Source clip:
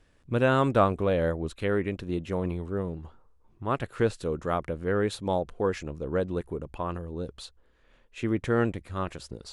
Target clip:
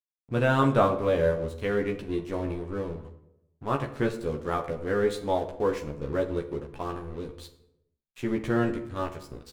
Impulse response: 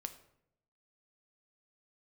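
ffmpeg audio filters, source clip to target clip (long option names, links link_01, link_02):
-filter_complex "[0:a]aeval=exprs='sgn(val(0))*max(abs(val(0))-0.00562,0)':channel_layout=same,asplit=2[link_01][link_02];[link_02]adelay=14,volume=-3dB[link_03];[link_01][link_03]amix=inputs=2:normalize=0[link_04];[1:a]atrim=start_sample=2205,asetrate=39690,aresample=44100[link_05];[link_04][link_05]afir=irnorm=-1:irlink=0,volume=1.5dB"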